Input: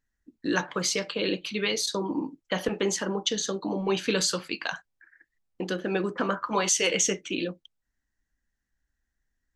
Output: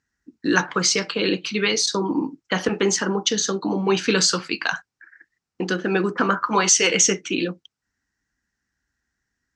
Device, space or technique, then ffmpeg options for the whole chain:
car door speaker: -af "highpass=82,equalizer=frequency=580:width_type=q:width=4:gain=-7,equalizer=frequency=1400:width_type=q:width=4:gain=4,equalizer=frequency=3400:width_type=q:width=4:gain=-4,equalizer=frequency=5400:width_type=q:width=4:gain=4,lowpass=frequency=8000:width=0.5412,lowpass=frequency=8000:width=1.3066,volume=7dB"

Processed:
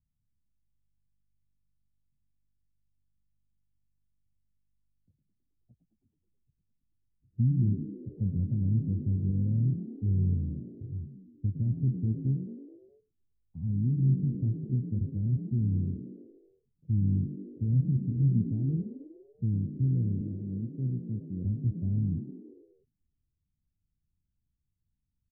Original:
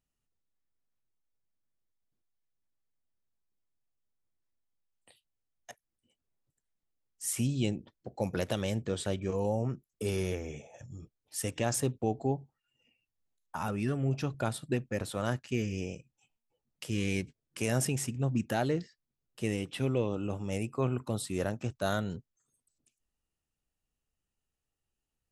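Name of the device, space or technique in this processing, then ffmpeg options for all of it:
the neighbour's flat through the wall: -filter_complex "[0:a]lowpass=frequency=200:width=0.5412,lowpass=frequency=200:width=1.3066,equalizer=frequency=87:width_type=o:width=0.77:gain=6,asettb=1/sr,asplit=3[link_01][link_02][link_03];[link_01]atrim=end=20.214[link_04];[link_02]atrim=start=20.21:end=21.45,asetpts=PTS-STARTPTS,afade=type=in:duration=0.004:curve=qsin,afade=type=out:start_time=1.236:duration=0.004:curve=qsin,highpass=160[link_05];[link_03]atrim=start=21.446[link_06];[link_04][link_05]acrossfade=duration=0.004:curve1=hsin:curve2=qsin[link_07];[link_07][link_06]acrossfade=duration=0.004:curve1=qsin:curve2=hsin,asplit=7[link_08][link_09][link_10][link_11][link_12][link_13][link_14];[link_09]adelay=106,afreqshift=49,volume=-11.5dB[link_15];[link_10]adelay=212,afreqshift=98,volume=-16.5dB[link_16];[link_11]adelay=318,afreqshift=147,volume=-21.6dB[link_17];[link_12]adelay=424,afreqshift=196,volume=-26.6dB[link_18];[link_13]adelay=530,afreqshift=245,volume=-31.6dB[link_19];[link_14]adelay=636,afreqshift=294,volume=-36.7dB[link_20];[link_08][link_15][link_16][link_17][link_18][link_19][link_20]amix=inputs=7:normalize=0,volume=5.5dB"

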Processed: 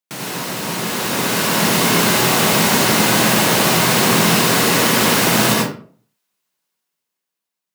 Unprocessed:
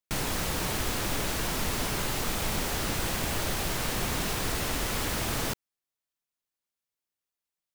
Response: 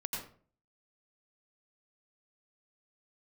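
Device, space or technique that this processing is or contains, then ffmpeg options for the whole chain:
far laptop microphone: -filter_complex "[1:a]atrim=start_sample=2205[link_01];[0:a][link_01]afir=irnorm=-1:irlink=0,highpass=frequency=140:width=0.5412,highpass=frequency=140:width=1.3066,dynaudnorm=framelen=290:gausssize=9:maxgain=11dB,volume=4.5dB"

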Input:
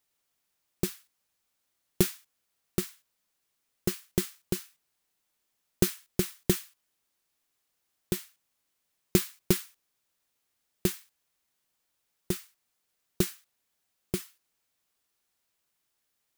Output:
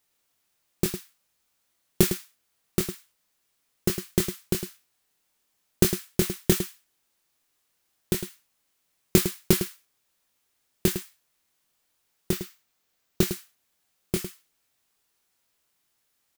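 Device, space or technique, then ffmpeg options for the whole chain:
slapback doubling: -filter_complex "[0:a]asplit=3[link_01][link_02][link_03];[link_02]adelay=24,volume=-7dB[link_04];[link_03]adelay=106,volume=-10dB[link_05];[link_01][link_04][link_05]amix=inputs=3:normalize=0,asettb=1/sr,asplit=3[link_06][link_07][link_08];[link_06]atrim=end=12.314[link_09];[link_07]atrim=start=12.31:end=13.28,asetpts=PTS-STARTPTS,afade=type=in:duration=0.004:curve=qsin,afade=type=out:start_time=0.966:duration=0.004:curve=qsin,equalizer=frequency=10000:width=1.9:gain=-5.5[link_10];[link_08]atrim=start=13.276[link_11];[link_09][link_10]acrossfade=duration=0.004:curve1=hsin:curve2=qsin[link_12];[link_12][link_11]acrossfade=duration=0.004:curve1=qsin:curve2=hsin,volume=4dB"

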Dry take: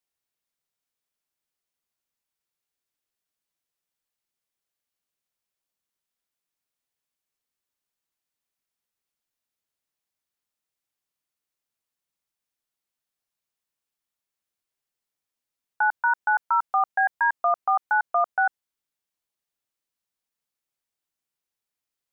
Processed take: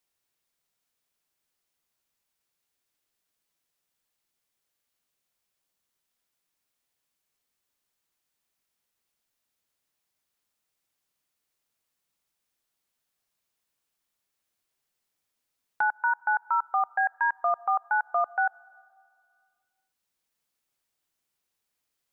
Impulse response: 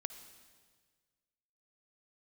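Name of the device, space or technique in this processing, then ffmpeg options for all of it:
ducked reverb: -filter_complex "[0:a]asplit=3[link_01][link_02][link_03];[1:a]atrim=start_sample=2205[link_04];[link_02][link_04]afir=irnorm=-1:irlink=0[link_05];[link_03]apad=whole_len=975526[link_06];[link_05][link_06]sidechaincompress=threshold=-41dB:ratio=6:attack=20:release=1100,volume=9.5dB[link_07];[link_01][link_07]amix=inputs=2:normalize=0,volume=-5dB"

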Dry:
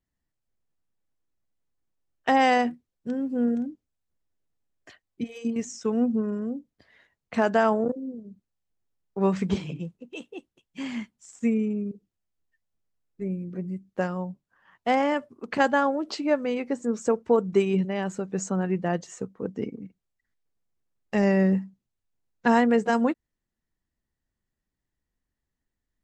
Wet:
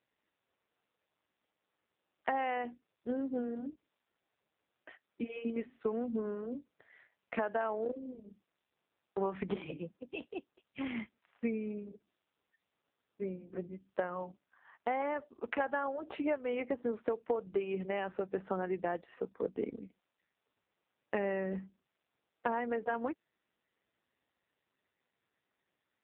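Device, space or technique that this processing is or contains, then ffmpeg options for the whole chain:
voicemail: -af "highpass=370,lowpass=2800,acompressor=threshold=-31dB:ratio=10,volume=2dB" -ar 8000 -c:a libopencore_amrnb -b:a 5900

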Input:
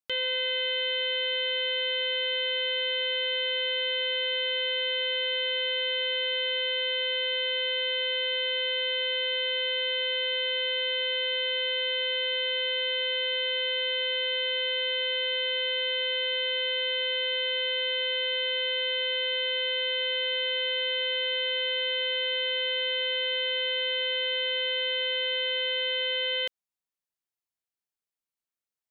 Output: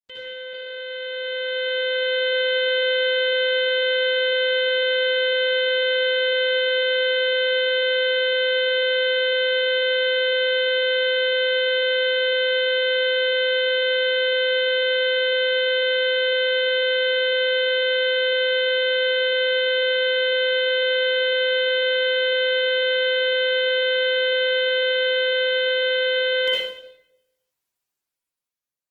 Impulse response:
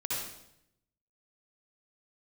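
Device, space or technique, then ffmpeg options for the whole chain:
speakerphone in a meeting room: -filter_complex "[1:a]atrim=start_sample=2205[link_01];[0:a][link_01]afir=irnorm=-1:irlink=0,dynaudnorm=framelen=340:gausssize=9:maxgain=14dB,volume=-6.5dB" -ar 48000 -c:a libopus -b:a 16k

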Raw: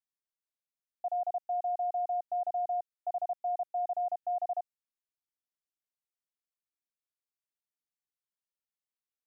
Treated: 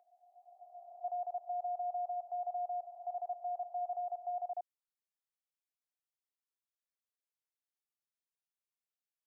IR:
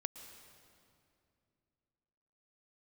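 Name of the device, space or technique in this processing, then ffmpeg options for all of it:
ghost voice: -filter_complex "[0:a]areverse[link_01];[1:a]atrim=start_sample=2205[link_02];[link_01][link_02]afir=irnorm=-1:irlink=0,areverse,highpass=frequency=380:width=0.5412,highpass=frequency=380:width=1.3066,volume=-4dB"

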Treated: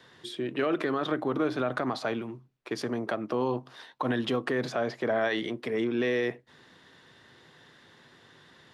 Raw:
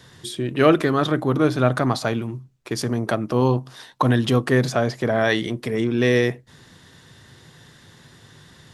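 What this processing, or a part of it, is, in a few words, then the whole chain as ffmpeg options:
DJ mixer with the lows and highs turned down: -filter_complex "[0:a]acrossover=split=230 4300:gain=0.2 1 0.224[link_01][link_02][link_03];[link_01][link_02][link_03]amix=inputs=3:normalize=0,alimiter=limit=-14.5dB:level=0:latency=1:release=66,volume=-4dB"

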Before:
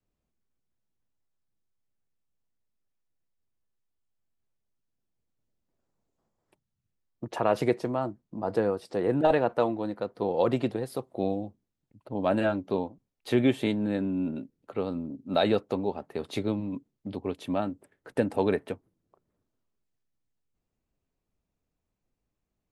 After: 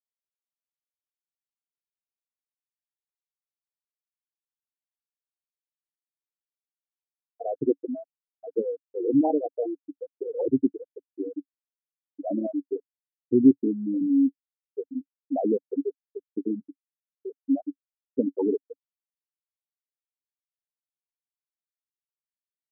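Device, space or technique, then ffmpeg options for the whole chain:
bass cabinet: -af "afftfilt=real='re*gte(hypot(re,im),0.282)':imag='im*gte(hypot(re,im),0.282)':win_size=1024:overlap=0.75,highpass=83,equalizer=frequency=120:width_type=q:width=4:gain=-5,equalizer=frequency=200:width_type=q:width=4:gain=-4,equalizer=frequency=280:width_type=q:width=4:gain=9,equalizer=frequency=590:width_type=q:width=4:gain=-10,equalizer=frequency=1000:width_type=q:width=4:gain=-5,equalizer=frequency=1500:width_type=q:width=4:gain=9,lowpass=frequency=2100:width=0.5412,lowpass=frequency=2100:width=1.3066,volume=2.5dB"

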